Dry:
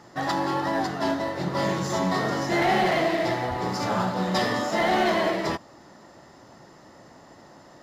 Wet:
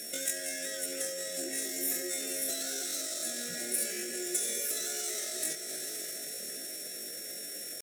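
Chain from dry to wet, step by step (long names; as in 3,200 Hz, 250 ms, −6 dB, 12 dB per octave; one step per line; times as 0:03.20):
in parallel at −9 dB: wave folding −29.5 dBFS
on the sum: high-pass filter 73 Hz 12 dB per octave
parametric band 9,200 Hz +4 dB 1.7 octaves
four-comb reverb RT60 3.6 s, combs from 32 ms, DRR 15 dB
downward compressor 12 to 1, threshold −35 dBFS, peak gain reduction 17 dB
Chebyshev band-stop filter 290–960 Hz, order 2
pitch shifter +11.5 semitones
steady tone 5,500 Hz −56 dBFS
high shelf with overshoot 4,800 Hz +14 dB, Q 1.5
on a send: delay that swaps between a low-pass and a high-pass 262 ms, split 1,900 Hz, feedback 85%, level −13 dB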